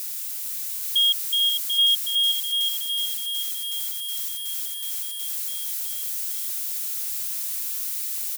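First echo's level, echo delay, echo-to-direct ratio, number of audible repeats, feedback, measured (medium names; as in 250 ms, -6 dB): -6.0 dB, 451 ms, -1.0 dB, 3, no regular repeats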